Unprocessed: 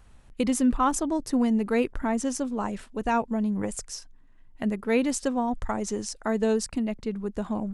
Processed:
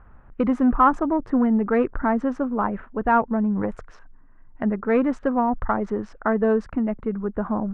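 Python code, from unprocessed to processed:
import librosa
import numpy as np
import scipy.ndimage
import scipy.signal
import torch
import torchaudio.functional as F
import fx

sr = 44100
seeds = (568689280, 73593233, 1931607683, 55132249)

y = fx.wiener(x, sr, points=9)
y = 10.0 ** (-15.0 / 20.0) * np.tanh(y / 10.0 ** (-15.0 / 20.0))
y = fx.lowpass_res(y, sr, hz=1400.0, q=2.1)
y = y * librosa.db_to_amplitude(4.5)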